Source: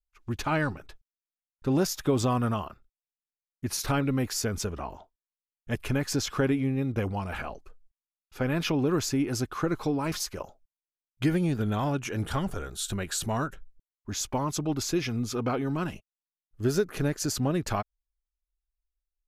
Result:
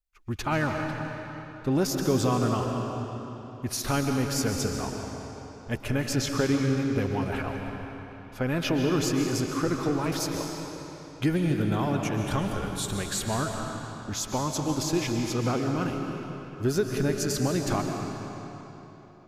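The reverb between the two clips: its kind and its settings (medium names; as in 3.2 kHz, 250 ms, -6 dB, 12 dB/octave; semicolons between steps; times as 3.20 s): algorithmic reverb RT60 3.6 s, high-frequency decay 0.85×, pre-delay 95 ms, DRR 2.5 dB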